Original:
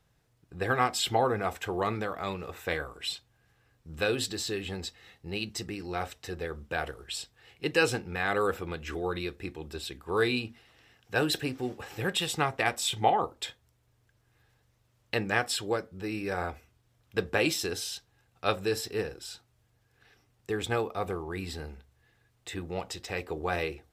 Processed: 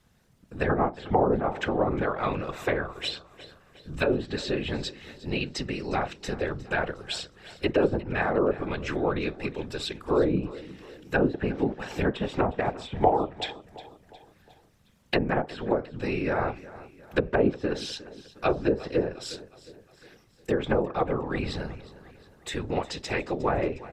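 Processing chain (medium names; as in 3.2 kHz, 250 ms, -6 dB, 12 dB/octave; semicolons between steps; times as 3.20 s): whisper effect; low-pass that closes with the level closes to 660 Hz, closed at -24.5 dBFS; feedback delay 359 ms, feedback 48%, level -18 dB; trim +6 dB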